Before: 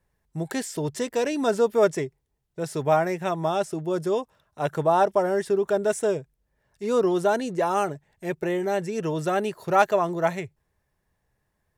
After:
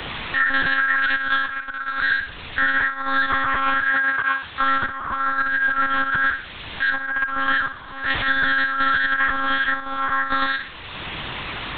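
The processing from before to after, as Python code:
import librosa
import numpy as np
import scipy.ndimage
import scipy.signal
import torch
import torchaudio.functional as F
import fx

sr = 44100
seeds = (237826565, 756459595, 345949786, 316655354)

p1 = fx.band_invert(x, sr, width_hz=2000)
p2 = fx.tilt_eq(p1, sr, slope=4.5, at=(1.44, 1.97), fade=0.02)
p3 = fx.quant_dither(p2, sr, seeds[0], bits=8, dither='triangular')
p4 = fx.rev_gated(p3, sr, seeds[1], gate_ms=190, shape='flat', drr_db=-4.0)
p5 = fx.leveller(p4, sr, passes=5, at=(7.68, 8.25))
p6 = fx.over_compress(p5, sr, threshold_db=-23.0, ratio=-0.5)
p7 = fx.high_shelf(p6, sr, hz=2900.0, db=5.5)
p8 = p7 + fx.room_flutter(p7, sr, wall_m=9.8, rt60_s=0.35, dry=0)
p9 = fx.lpc_monotone(p8, sr, seeds[2], pitch_hz=270.0, order=8)
p10 = fx.highpass(p9, sr, hz=fx.line((3.89, 140.0), (4.61, 360.0)), slope=6, at=(3.89, 4.61), fade=0.02)
y = fx.band_squash(p10, sr, depth_pct=70)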